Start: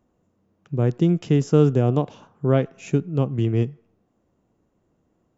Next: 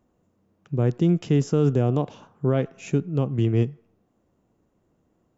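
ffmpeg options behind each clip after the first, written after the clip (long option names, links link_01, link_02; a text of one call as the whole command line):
ffmpeg -i in.wav -af "alimiter=limit=-11dB:level=0:latency=1" out.wav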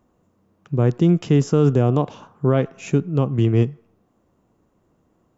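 ffmpeg -i in.wav -af "equalizer=frequency=1100:width=2.2:gain=4,volume=4dB" out.wav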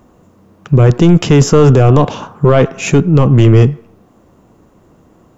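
ffmpeg -i in.wav -af "apsyclip=18.5dB,aeval=exprs='1.12*(cos(1*acos(clip(val(0)/1.12,-1,1)))-cos(1*PI/2))+0.02*(cos(6*acos(clip(val(0)/1.12,-1,1)))-cos(6*PI/2))':channel_layout=same,volume=-2dB" out.wav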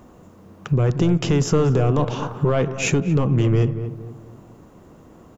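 ffmpeg -i in.wav -filter_complex "[0:a]acompressor=threshold=-20dB:ratio=3,asplit=2[link_01][link_02];[link_02]adelay=231,lowpass=frequency=1100:poles=1,volume=-10dB,asplit=2[link_03][link_04];[link_04]adelay=231,lowpass=frequency=1100:poles=1,volume=0.39,asplit=2[link_05][link_06];[link_06]adelay=231,lowpass=frequency=1100:poles=1,volume=0.39,asplit=2[link_07][link_08];[link_08]adelay=231,lowpass=frequency=1100:poles=1,volume=0.39[link_09];[link_03][link_05][link_07][link_09]amix=inputs=4:normalize=0[link_10];[link_01][link_10]amix=inputs=2:normalize=0" out.wav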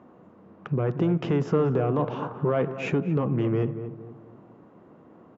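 ffmpeg -i in.wav -af "highpass=160,lowpass=2000,volume=-3.5dB" out.wav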